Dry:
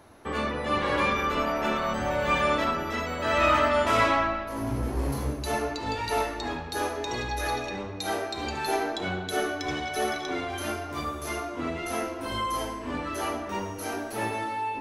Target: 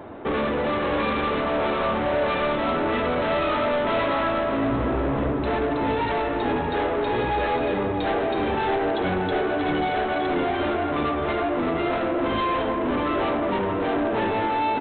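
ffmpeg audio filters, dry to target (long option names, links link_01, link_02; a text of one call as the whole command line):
ffmpeg -i in.wav -filter_complex "[0:a]equalizer=frequency=390:width=0.35:gain=11,acompressor=threshold=-20dB:ratio=6,aresample=8000,asoftclip=type=tanh:threshold=-27.5dB,aresample=44100,asplit=2[link_01][link_02];[link_02]adelay=627,lowpass=frequency=3000:poles=1,volume=-8dB,asplit=2[link_03][link_04];[link_04]adelay=627,lowpass=frequency=3000:poles=1,volume=0.53,asplit=2[link_05][link_06];[link_06]adelay=627,lowpass=frequency=3000:poles=1,volume=0.53,asplit=2[link_07][link_08];[link_08]adelay=627,lowpass=frequency=3000:poles=1,volume=0.53,asplit=2[link_09][link_10];[link_10]adelay=627,lowpass=frequency=3000:poles=1,volume=0.53,asplit=2[link_11][link_12];[link_12]adelay=627,lowpass=frequency=3000:poles=1,volume=0.53[link_13];[link_01][link_03][link_05][link_07][link_09][link_11][link_13]amix=inputs=7:normalize=0,volume=6dB" out.wav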